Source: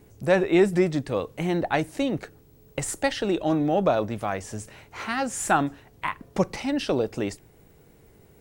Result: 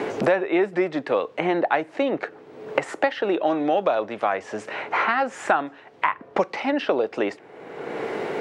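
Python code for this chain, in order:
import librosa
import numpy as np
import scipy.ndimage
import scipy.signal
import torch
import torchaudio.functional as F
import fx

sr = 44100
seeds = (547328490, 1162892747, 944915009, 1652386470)

y = fx.bandpass_edges(x, sr, low_hz=450.0, high_hz=2400.0)
y = fx.band_squash(y, sr, depth_pct=100)
y = y * 10.0 ** (5.5 / 20.0)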